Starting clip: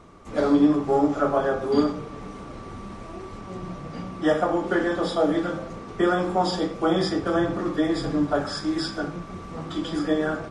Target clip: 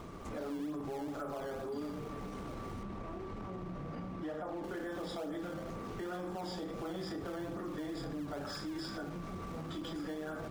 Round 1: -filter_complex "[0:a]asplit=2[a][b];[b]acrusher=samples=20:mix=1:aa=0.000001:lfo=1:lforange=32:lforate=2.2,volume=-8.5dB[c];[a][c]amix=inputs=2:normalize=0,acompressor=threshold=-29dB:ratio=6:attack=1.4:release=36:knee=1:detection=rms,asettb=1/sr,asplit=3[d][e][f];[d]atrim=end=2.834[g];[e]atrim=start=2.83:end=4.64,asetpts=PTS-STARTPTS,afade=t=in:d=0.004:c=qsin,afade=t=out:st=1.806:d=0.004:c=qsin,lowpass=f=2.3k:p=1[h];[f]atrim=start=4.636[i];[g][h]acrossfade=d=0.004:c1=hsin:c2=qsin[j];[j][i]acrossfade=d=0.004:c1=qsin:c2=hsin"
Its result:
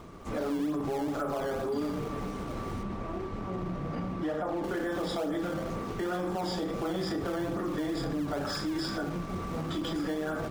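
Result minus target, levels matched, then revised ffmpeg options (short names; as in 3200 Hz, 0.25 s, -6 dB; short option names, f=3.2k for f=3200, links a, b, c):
compressor: peak gain reduction -8.5 dB
-filter_complex "[0:a]asplit=2[a][b];[b]acrusher=samples=20:mix=1:aa=0.000001:lfo=1:lforange=32:lforate=2.2,volume=-8.5dB[c];[a][c]amix=inputs=2:normalize=0,acompressor=threshold=-39dB:ratio=6:attack=1.4:release=36:knee=1:detection=rms,asettb=1/sr,asplit=3[d][e][f];[d]atrim=end=2.834[g];[e]atrim=start=2.83:end=4.64,asetpts=PTS-STARTPTS,afade=t=in:d=0.004:c=qsin,afade=t=out:st=1.806:d=0.004:c=qsin,lowpass=f=2.3k:p=1[h];[f]atrim=start=4.636[i];[g][h]acrossfade=d=0.004:c1=hsin:c2=qsin[j];[j][i]acrossfade=d=0.004:c1=qsin:c2=hsin"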